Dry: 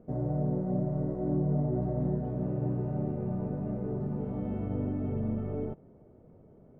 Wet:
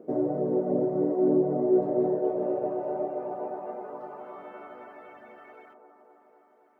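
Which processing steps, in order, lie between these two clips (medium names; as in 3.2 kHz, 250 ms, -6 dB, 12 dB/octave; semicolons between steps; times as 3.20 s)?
high-pass sweep 350 Hz -> 1.7 kHz, 1.59–5.26 s; reverb removal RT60 0.67 s; feedback echo behind a band-pass 257 ms, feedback 74%, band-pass 500 Hz, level -5 dB; trim +5.5 dB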